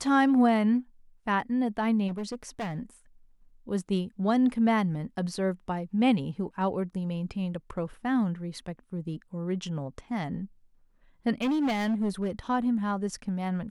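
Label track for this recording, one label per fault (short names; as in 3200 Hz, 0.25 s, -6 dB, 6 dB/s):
2.070000	2.790000	clipped -29.5 dBFS
11.410000	12.280000	clipped -23.5 dBFS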